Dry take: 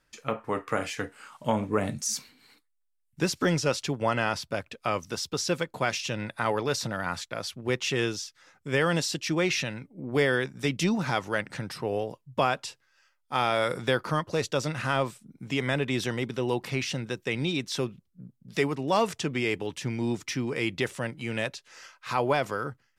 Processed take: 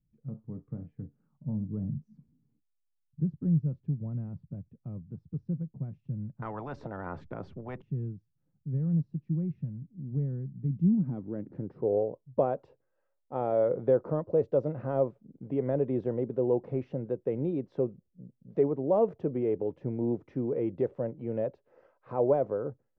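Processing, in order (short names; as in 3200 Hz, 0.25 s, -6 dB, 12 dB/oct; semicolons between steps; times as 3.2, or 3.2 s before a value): low-pass sweep 160 Hz -> 530 Hz, 10.69–11.99; 6.42–7.82 spectral compressor 10:1; gain -3.5 dB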